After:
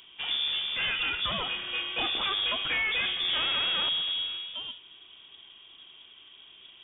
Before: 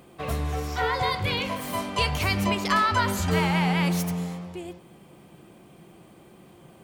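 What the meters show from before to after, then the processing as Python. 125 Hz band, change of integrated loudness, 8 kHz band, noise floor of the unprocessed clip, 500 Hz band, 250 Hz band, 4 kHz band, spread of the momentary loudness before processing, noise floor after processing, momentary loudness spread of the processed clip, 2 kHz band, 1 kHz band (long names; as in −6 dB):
−23.5 dB, −2.0 dB, below −40 dB, −52 dBFS, −13.0 dB, −20.0 dB, +7.0 dB, 11 LU, −54 dBFS, 8 LU, −1.5 dB, −12.0 dB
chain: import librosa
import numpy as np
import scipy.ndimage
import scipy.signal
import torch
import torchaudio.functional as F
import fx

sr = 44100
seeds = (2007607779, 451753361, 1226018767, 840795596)

y = fx.tube_stage(x, sr, drive_db=25.0, bias=0.4)
y = fx.freq_invert(y, sr, carrier_hz=3500)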